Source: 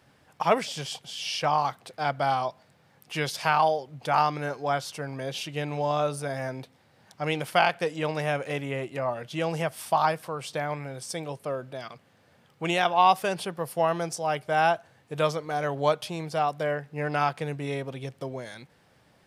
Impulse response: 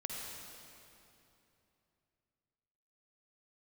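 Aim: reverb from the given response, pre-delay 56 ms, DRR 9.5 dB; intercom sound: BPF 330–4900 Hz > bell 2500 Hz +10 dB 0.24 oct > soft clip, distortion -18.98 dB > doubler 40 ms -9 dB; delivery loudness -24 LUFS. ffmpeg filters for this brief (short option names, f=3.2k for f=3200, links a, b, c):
-filter_complex "[0:a]asplit=2[a][b];[1:a]atrim=start_sample=2205,adelay=56[c];[b][c]afir=irnorm=-1:irlink=0,volume=-10dB[d];[a][d]amix=inputs=2:normalize=0,highpass=330,lowpass=4.9k,equalizer=f=2.5k:t=o:w=0.24:g=10,asoftclip=threshold=-12.5dB,asplit=2[e][f];[f]adelay=40,volume=-9dB[g];[e][g]amix=inputs=2:normalize=0,volume=3.5dB"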